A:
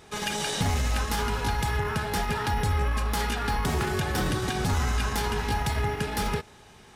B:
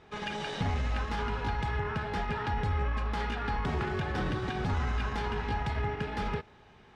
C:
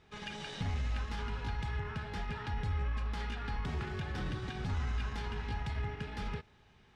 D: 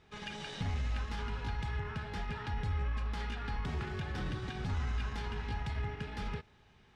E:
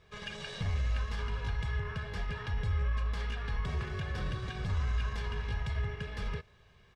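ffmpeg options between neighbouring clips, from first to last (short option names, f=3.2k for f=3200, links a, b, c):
-af "lowpass=3k,volume=-4.5dB"
-af "equalizer=f=630:w=0.36:g=-8,volume=-2.5dB"
-af anull
-af "aecho=1:1:1.8:0.6"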